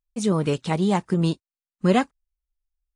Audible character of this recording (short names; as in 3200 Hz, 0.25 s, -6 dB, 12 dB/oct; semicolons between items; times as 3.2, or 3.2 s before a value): noise floor -96 dBFS; spectral tilt -6.5 dB/oct